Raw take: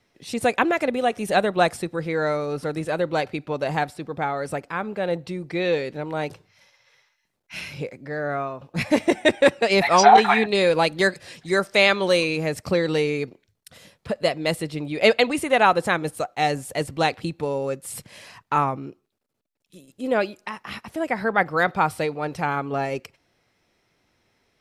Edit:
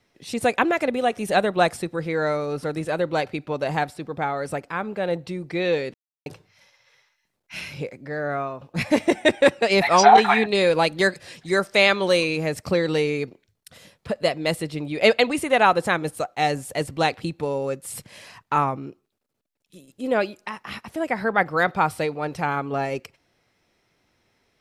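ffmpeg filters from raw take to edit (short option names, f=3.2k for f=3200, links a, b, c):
-filter_complex "[0:a]asplit=3[a][b][c];[a]atrim=end=5.94,asetpts=PTS-STARTPTS,afade=t=out:st=5.936:d=0.004:c=hsin[d];[b]atrim=start=5.94:end=6.26,asetpts=PTS-STARTPTS,volume=0[e];[c]atrim=start=6.26,asetpts=PTS-STARTPTS,afade=t=in:d=0.004:c=hsin[f];[d][e][f]concat=n=3:v=0:a=1"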